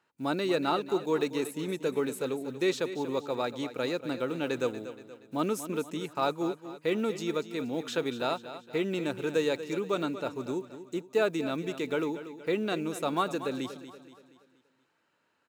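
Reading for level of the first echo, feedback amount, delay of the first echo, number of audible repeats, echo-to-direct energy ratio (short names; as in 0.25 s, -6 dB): -12.5 dB, 46%, 0.237 s, 4, -11.5 dB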